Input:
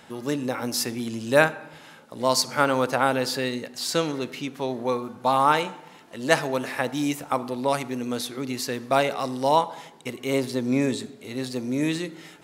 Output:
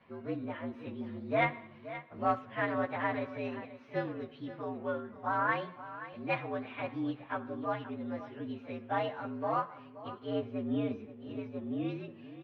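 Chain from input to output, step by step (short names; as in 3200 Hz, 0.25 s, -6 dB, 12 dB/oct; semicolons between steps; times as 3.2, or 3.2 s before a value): inharmonic rescaling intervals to 116%; 1.42–2.39 sample leveller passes 1; inverse Chebyshev low-pass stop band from 7100 Hz, stop band 50 dB; echo 0.527 s -14 dB; gain -8.5 dB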